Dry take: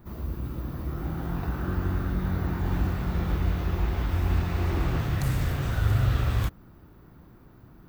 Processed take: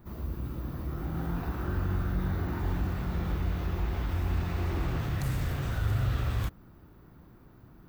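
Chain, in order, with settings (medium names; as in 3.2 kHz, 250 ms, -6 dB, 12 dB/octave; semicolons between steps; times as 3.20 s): in parallel at -2 dB: peak limiter -23.5 dBFS, peak gain reduction 10.5 dB; 1.10–2.73 s: on the sum: doubling 42 ms -5 dB; trim -7.5 dB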